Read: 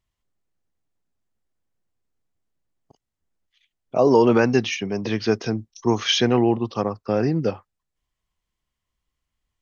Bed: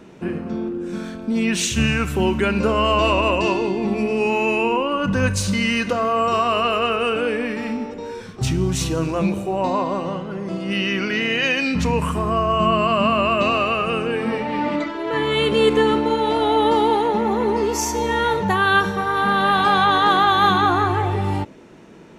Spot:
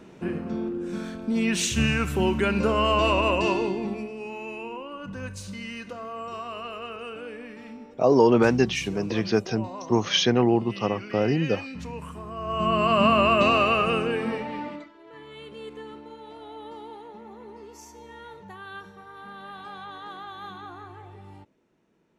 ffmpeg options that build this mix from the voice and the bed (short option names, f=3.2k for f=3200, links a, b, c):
-filter_complex "[0:a]adelay=4050,volume=-2dB[a];[1:a]volume=11.5dB,afade=t=out:st=3.61:d=0.51:silence=0.237137,afade=t=in:st=12.36:d=0.68:silence=0.16788,afade=t=out:st=13.8:d=1.09:silence=0.0707946[b];[a][b]amix=inputs=2:normalize=0"